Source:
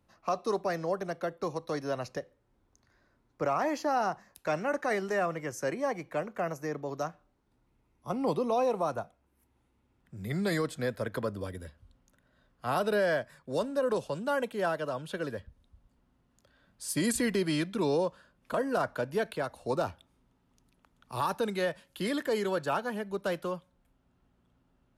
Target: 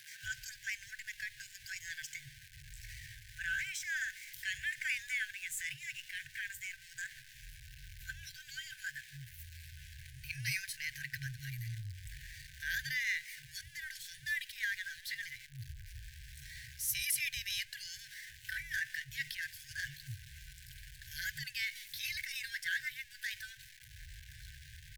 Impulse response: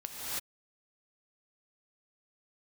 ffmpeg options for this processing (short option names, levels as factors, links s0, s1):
-filter_complex "[0:a]aeval=exprs='val(0)+0.5*0.0075*sgn(val(0))':c=same,asetrate=53981,aresample=44100,atempo=0.816958,acrossover=split=220[s0][s1];[s0]adelay=230[s2];[s2][s1]amix=inputs=2:normalize=0,afftfilt=real='re*(1-between(b*sr/4096,140,1500))':imag='im*(1-between(b*sr/4096,140,1500))':win_size=4096:overlap=0.75"